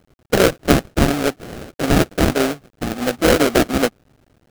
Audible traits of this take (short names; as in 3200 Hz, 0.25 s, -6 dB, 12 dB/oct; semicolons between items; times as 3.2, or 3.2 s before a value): aliases and images of a low sample rate 1000 Hz, jitter 20%; tremolo saw down 10 Hz, depth 30%; a quantiser's noise floor 10-bit, dither none